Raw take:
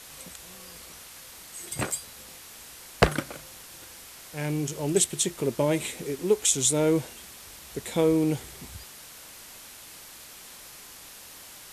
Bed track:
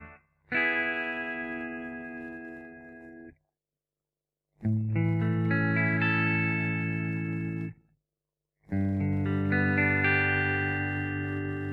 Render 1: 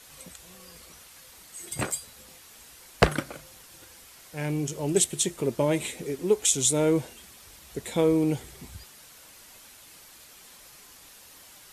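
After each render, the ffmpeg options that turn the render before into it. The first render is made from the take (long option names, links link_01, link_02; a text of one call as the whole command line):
ffmpeg -i in.wav -af "afftdn=noise_reduction=6:noise_floor=-47" out.wav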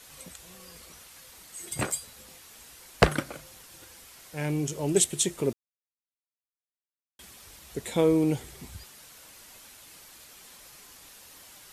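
ffmpeg -i in.wav -filter_complex "[0:a]asplit=3[link_01][link_02][link_03];[link_01]atrim=end=5.53,asetpts=PTS-STARTPTS,afade=type=out:start_time=5.526:duration=0.004:curve=hsin[link_04];[link_02]atrim=start=5.53:end=7.19,asetpts=PTS-STARTPTS,volume=0[link_05];[link_03]atrim=start=7.19,asetpts=PTS-STARTPTS,afade=type=in:duration=0.004:curve=hsin[link_06];[link_04][link_05][link_06]concat=n=3:v=0:a=1" out.wav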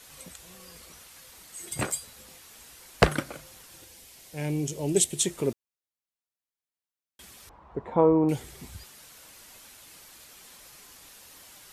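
ffmpeg -i in.wav -filter_complex "[0:a]asettb=1/sr,asplit=3[link_01][link_02][link_03];[link_01]atrim=end=3.814[link_04];[link_02]atrim=start=3.81:end=5.19,asetpts=PTS-STARTPTS,afade=type=in:duration=0.004:curve=qsin,afade=type=out:start_time=1.376:duration=0.004:curve=qsin,equalizer=frequency=1300:width=1.5:gain=-8.5[link_05];[link_03]atrim=start=5.186[link_06];[link_04][link_05]acrossfade=duration=0.004:curve1=hsin:curve2=qsin[link_07];[link_07][link_06]acrossfade=duration=0.004:curve1=qsin:curve2=hsin,asettb=1/sr,asplit=3[link_08][link_09][link_10];[link_08]atrim=end=7.494[link_11];[link_09]atrim=start=7.49:end=8.29,asetpts=PTS-STARTPTS,afade=type=in:duration=0.004:curve=qsin,afade=type=out:start_time=0.796:duration=0.004:curve=qsin,lowpass=frequency=990:width_type=q:width=3.6[link_12];[link_10]atrim=start=8.286[link_13];[link_11][link_12]acrossfade=duration=0.004:curve1=hsin:curve2=qsin[link_14];[link_14][link_13]acrossfade=duration=0.004:curve1=qsin:curve2=hsin" out.wav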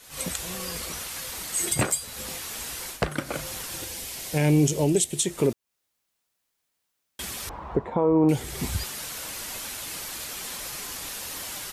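ffmpeg -i in.wav -af "dynaudnorm=framelen=100:gausssize=3:maxgain=15dB,alimiter=limit=-12dB:level=0:latency=1:release=331" out.wav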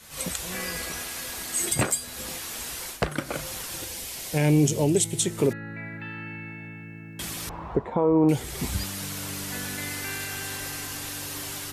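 ffmpeg -i in.wav -i bed.wav -filter_complex "[1:a]volume=-11dB[link_01];[0:a][link_01]amix=inputs=2:normalize=0" out.wav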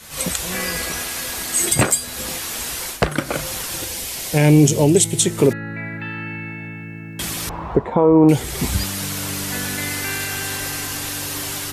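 ffmpeg -i in.wav -af "volume=8dB" out.wav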